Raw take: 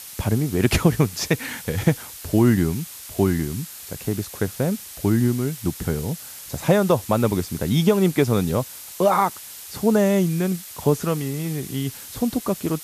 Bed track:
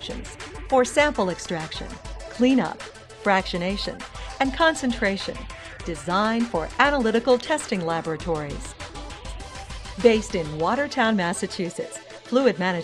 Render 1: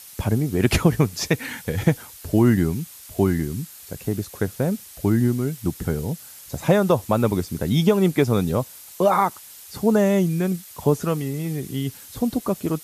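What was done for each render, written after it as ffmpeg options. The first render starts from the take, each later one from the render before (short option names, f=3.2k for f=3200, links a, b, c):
-af "afftdn=nr=6:nf=-39"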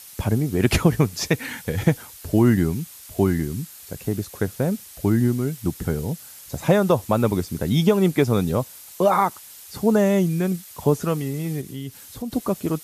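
-filter_complex "[0:a]asettb=1/sr,asplit=3[a][b][c];[a]atrim=end=11.614[d];[b]atrim=start=11.61:end=12.32,asetpts=PTS-STARTPTS,afade=t=in:d=0.004:c=qsin,afade=t=out:st=0.706:d=0.004:c=qsin,acompressor=threshold=-39dB:ratio=1.5:attack=3.2:release=140:knee=1:detection=peak[e];[c]atrim=start=12.316[f];[d][e]acrossfade=d=0.004:c1=hsin:c2=qsin[g];[g][f]acrossfade=d=0.004:c1=qsin:c2=hsin"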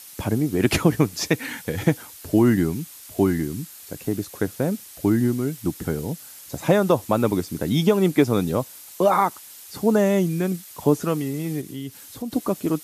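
-af "highpass=f=140:p=1,equalizer=f=300:t=o:w=0.25:g=6"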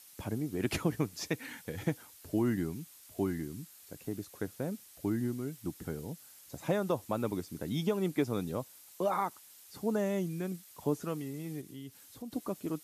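-af "volume=-13dB"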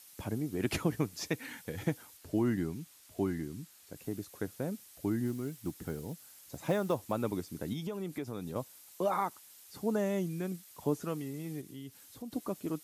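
-filter_complex "[0:a]asettb=1/sr,asplit=3[a][b][c];[a]atrim=end=2.174[d];[b]atrim=start=2.17:end=3.96,asetpts=PTS-STARTPTS,afade=t=in:d=0.004:c=qsin,afade=t=out:st=1.786:d=0.004:c=qsin,highshelf=f=9.3k:g=-6.5[e];[c]atrim=start=3.956[f];[d][e]acrossfade=d=0.004:c1=hsin:c2=qsin[g];[g][f]acrossfade=d=0.004:c1=qsin:c2=hsin,asettb=1/sr,asplit=3[h][i][j];[h]atrim=end=5.264[k];[i]atrim=start=5.26:end=7.12,asetpts=PTS-STARTPTS,afade=t=in:d=0.004:c=qsin,afade=t=out:st=1.856:d=0.004:c=qsin,acrusher=bits=7:mode=log:mix=0:aa=0.000001[l];[j]atrim=start=7.116[m];[k][l]acrossfade=d=0.004:c1=hsin:c2=qsin[n];[n][m]acrossfade=d=0.004:c1=qsin:c2=hsin,asettb=1/sr,asplit=3[o][p][q];[o]atrim=end=7.734[r];[p]atrim=start=7.73:end=8.56,asetpts=PTS-STARTPTS,afade=t=in:d=0.004:c=qsin,afade=t=out:st=0.826:d=0.004:c=qsin,acompressor=threshold=-36dB:ratio=3:attack=3.2:release=140:knee=1:detection=peak[s];[q]atrim=start=8.556[t];[r][s]acrossfade=d=0.004:c1=hsin:c2=qsin[u];[u][t]acrossfade=d=0.004:c1=qsin:c2=hsin"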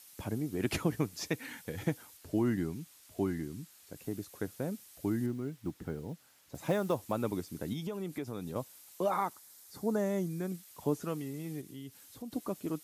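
-filter_complex "[0:a]asettb=1/sr,asplit=3[a][b][c];[a]atrim=end=5.264[d];[b]atrim=start=5.26:end=6.55,asetpts=PTS-STARTPTS,afade=t=in:d=0.004:c=qsin,afade=t=out:st=1.286:d=0.004:c=qsin,equalizer=f=12k:t=o:w=2.1:g=-11.5[e];[c]atrim=start=6.546[f];[d][e]acrossfade=d=0.004:c1=hsin:c2=qsin[g];[g][f]acrossfade=d=0.004:c1=qsin:c2=hsin,asettb=1/sr,asplit=3[h][i][j];[h]atrim=end=9.334[k];[i]atrim=start=9.33:end=10.5,asetpts=PTS-STARTPTS,afade=t=in:d=0.004:c=qsin,afade=t=out:st=1.166:d=0.004:c=qsin,equalizer=f=2.8k:w=2.9:g=-8.5[l];[j]atrim=start=10.496[m];[k][l]acrossfade=d=0.004:c1=hsin:c2=qsin[n];[n][m]acrossfade=d=0.004:c1=qsin:c2=hsin"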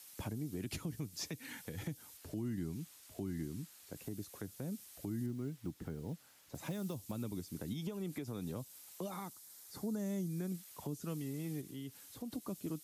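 -filter_complex "[0:a]acrossover=split=270|3000[a][b][c];[b]acompressor=threshold=-45dB:ratio=6[d];[a][d][c]amix=inputs=3:normalize=0,alimiter=level_in=7dB:limit=-24dB:level=0:latency=1:release=195,volume=-7dB"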